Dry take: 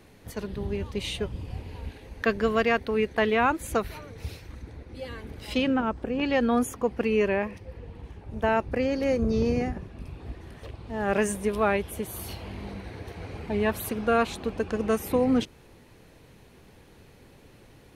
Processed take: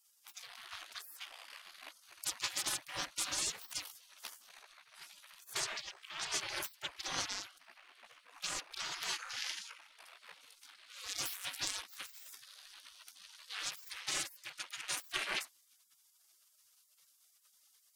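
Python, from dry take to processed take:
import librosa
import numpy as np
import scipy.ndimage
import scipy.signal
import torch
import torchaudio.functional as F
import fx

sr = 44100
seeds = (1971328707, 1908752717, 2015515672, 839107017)

y = fx.cheby_harmonics(x, sr, harmonics=(3, 4, 6), levels_db=(-15, -21, -14), full_scale_db=-11.5)
y = fx.spec_gate(y, sr, threshold_db=-30, keep='weak')
y = y * 10.0 ** (9.0 / 20.0)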